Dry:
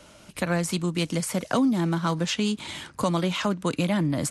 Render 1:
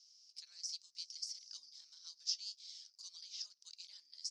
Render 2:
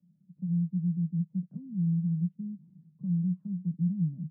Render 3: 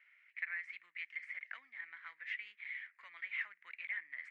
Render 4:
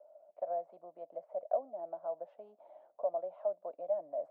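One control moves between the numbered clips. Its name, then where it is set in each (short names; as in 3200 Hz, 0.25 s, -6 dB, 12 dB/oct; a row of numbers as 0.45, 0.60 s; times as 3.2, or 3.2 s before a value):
Butterworth band-pass, frequency: 5200, 170, 2000, 640 Hz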